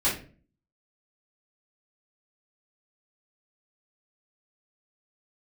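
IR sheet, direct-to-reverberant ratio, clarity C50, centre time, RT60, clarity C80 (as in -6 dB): -10.0 dB, 6.5 dB, 31 ms, 0.40 s, 13.0 dB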